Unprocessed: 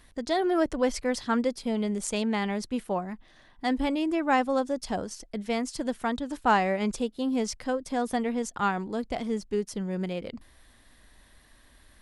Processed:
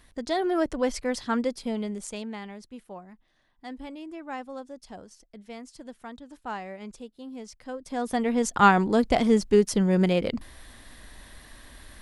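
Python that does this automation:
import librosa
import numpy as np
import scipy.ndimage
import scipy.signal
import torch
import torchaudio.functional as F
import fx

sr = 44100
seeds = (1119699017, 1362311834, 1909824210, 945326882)

y = fx.gain(x, sr, db=fx.line((1.65, -0.5), (2.6, -12.5), (7.51, -12.5), (7.99, -1.5), (8.64, 9.5)))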